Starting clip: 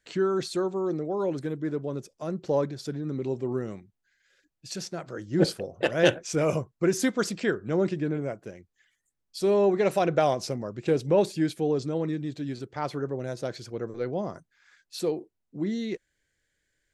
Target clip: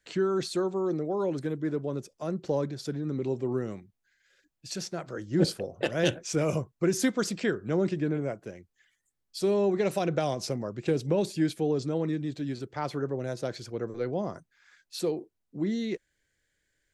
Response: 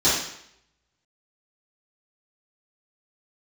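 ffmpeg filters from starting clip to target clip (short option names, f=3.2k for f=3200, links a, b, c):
-filter_complex "[0:a]acrossover=split=320|3000[a][b][c];[b]acompressor=threshold=-27dB:ratio=6[d];[a][d][c]amix=inputs=3:normalize=0"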